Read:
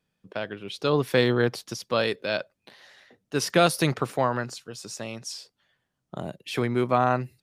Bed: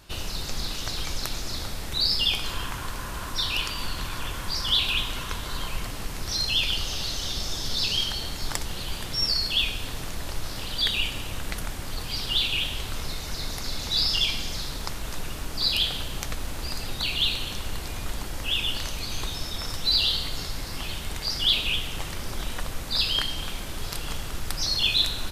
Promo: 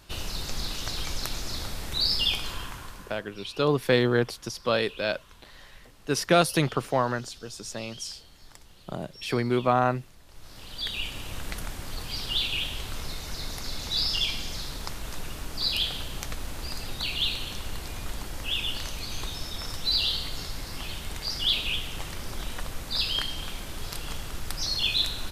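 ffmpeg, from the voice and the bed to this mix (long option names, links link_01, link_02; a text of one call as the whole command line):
ffmpeg -i stem1.wav -i stem2.wav -filter_complex "[0:a]adelay=2750,volume=-0.5dB[link_01];[1:a]volume=16.5dB,afade=type=out:start_time=2.27:duration=0.97:silence=0.105925,afade=type=in:start_time=10.28:duration=1.11:silence=0.125893[link_02];[link_01][link_02]amix=inputs=2:normalize=0" out.wav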